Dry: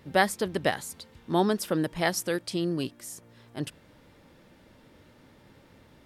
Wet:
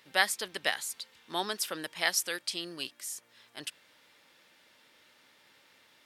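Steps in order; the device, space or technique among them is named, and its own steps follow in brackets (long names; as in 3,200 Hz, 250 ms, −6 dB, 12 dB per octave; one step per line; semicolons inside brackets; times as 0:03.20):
filter by subtraction (in parallel: low-pass filter 3,000 Hz 12 dB per octave + polarity inversion)
on the sum: level +1.5 dB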